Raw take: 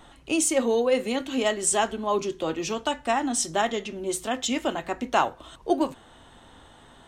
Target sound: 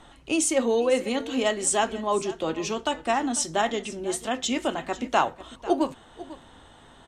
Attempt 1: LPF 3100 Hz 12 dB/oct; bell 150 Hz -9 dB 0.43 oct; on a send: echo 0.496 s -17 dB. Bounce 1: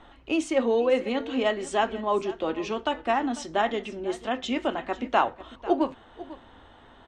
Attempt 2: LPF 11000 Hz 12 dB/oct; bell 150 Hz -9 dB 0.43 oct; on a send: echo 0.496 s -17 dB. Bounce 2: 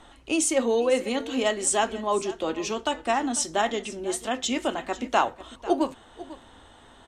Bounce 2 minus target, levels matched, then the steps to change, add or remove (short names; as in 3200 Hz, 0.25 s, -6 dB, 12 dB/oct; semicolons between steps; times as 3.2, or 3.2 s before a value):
125 Hz band -3.5 dB
remove: bell 150 Hz -9 dB 0.43 oct